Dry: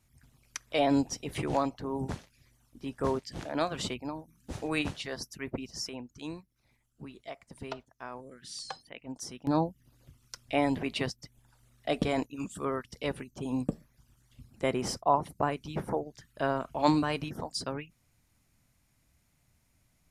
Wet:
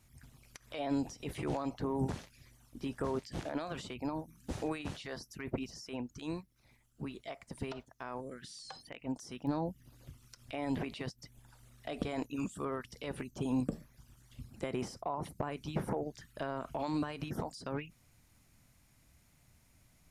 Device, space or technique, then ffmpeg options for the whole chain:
de-esser from a sidechain: -filter_complex "[0:a]asplit=2[a][b];[b]highpass=f=6.6k:p=1,apad=whole_len=886699[c];[a][c]sidechaincompress=threshold=-56dB:ratio=5:attack=2.5:release=52,volume=4dB"

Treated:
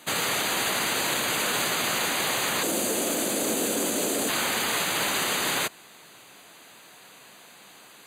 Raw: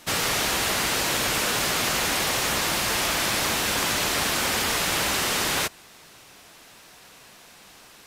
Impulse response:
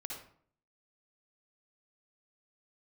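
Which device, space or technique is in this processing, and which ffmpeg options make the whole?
PA system with an anti-feedback notch: -filter_complex "[0:a]asettb=1/sr,asplit=3[a][b][c];[a]atrim=end=2.634[d];[b]atrim=start=2.63:end=4.29,asetpts=PTS-STARTPTS,afade=t=in:d=0.004:c=qsin,afade=t=out:st=1.656:d=0.004:c=qsin,equalizer=f=125:t=o:w=1:g=-9,equalizer=f=250:t=o:w=1:g=9,equalizer=f=500:t=o:w=1:g=7,equalizer=f=1k:t=o:w=1:g=-8,equalizer=f=2k:t=o:w=1:g=-7,equalizer=f=4k:t=o:w=1:g=-5,equalizer=f=8k:t=o:w=1:g=4[e];[c]atrim=start=4.286[f];[d][e]acrossfade=d=0.004:c1=hsin:c2=qsin[g];[g][f]acrossfade=d=0.004:c1=qsin:c2=hsin,highpass=150,asuperstop=centerf=5400:order=8:qfactor=4.6,alimiter=limit=-17dB:level=0:latency=1:release=15"

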